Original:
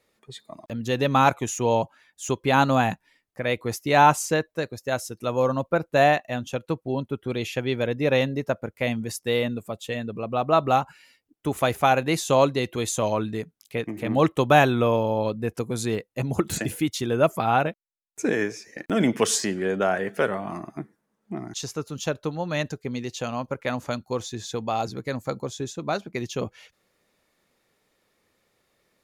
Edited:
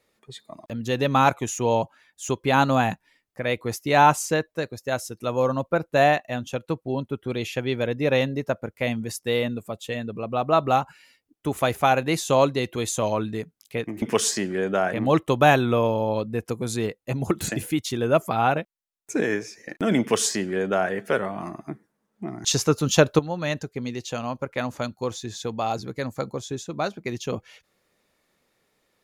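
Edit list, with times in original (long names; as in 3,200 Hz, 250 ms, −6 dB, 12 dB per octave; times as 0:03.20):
0:19.09–0:20.00: duplicate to 0:14.02
0:21.53–0:22.28: clip gain +10.5 dB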